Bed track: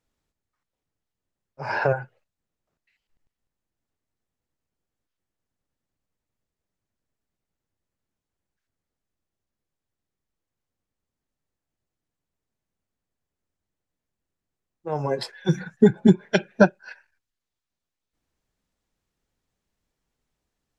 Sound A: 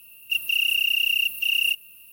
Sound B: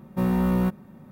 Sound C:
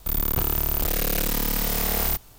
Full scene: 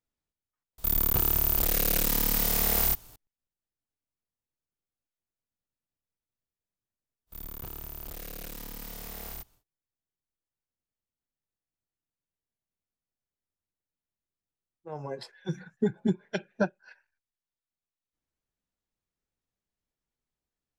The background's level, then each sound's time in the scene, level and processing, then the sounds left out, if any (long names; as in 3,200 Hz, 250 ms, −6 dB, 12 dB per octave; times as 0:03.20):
bed track −11.5 dB
0:00.78: overwrite with C −4 dB + high-shelf EQ 5,200 Hz +4.5 dB
0:07.26: mix in C −17 dB, fades 0.10 s
not used: A, B